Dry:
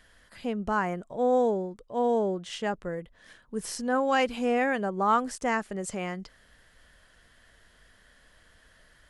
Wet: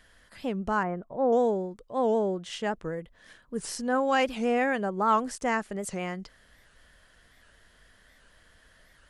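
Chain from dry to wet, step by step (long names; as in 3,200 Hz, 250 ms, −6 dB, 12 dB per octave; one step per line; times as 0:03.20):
0:00.83–0:01.33: low-pass filter 1,500 Hz 12 dB per octave
wow of a warped record 78 rpm, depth 160 cents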